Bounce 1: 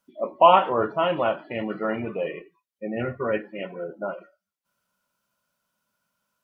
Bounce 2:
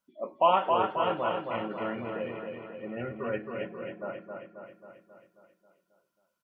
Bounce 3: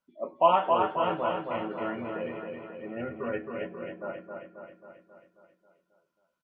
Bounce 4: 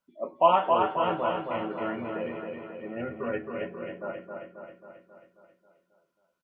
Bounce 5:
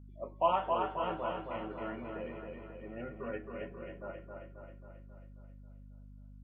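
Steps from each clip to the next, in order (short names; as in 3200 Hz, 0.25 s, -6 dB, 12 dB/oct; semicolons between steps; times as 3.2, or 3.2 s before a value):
feedback echo 0.269 s, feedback 59%, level -4.5 dB; gain -8 dB
LPF 3300 Hz 6 dB/oct; doubler 12 ms -6.5 dB
echo 0.324 s -16 dB; gain +1 dB
hum 50 Hz, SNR 13 dB; gain -8.5 dB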